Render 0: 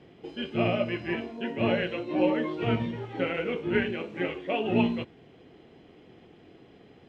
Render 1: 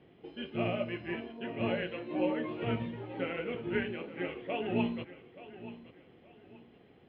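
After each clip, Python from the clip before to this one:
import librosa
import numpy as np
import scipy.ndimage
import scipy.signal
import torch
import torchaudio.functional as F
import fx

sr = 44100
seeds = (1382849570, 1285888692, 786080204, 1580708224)

y = scipy.signal.sosfilt(scipy.signal.butter(4, 3800.0, 'lowpass', fs=sr, output='sos'), x)
y = fx.echo_feedback(y, sr, ms=878, feedback_pct=30, wet_db=-15.5)
y = y * 10.0 ** (-6.5 / 20.0)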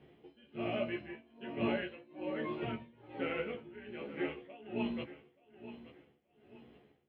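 y = x * (1.0 - 0.91 / 2.0 + 0.91 / 2.0 * np.cos(2.0 * np.pi * 1.2 * (np.arange(len(x)) / sr)))
y = fx.doubler(y, sr, ms=14.0, db=-3)
y = y * 10.0 ** (-2.0 / 20.0)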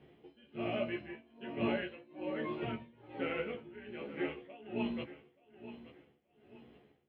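y = x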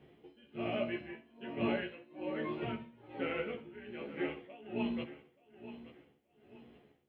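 y = fx.echo_feedback(x, sr, ms=64, feedback_pct=36, wet_db=-16.5)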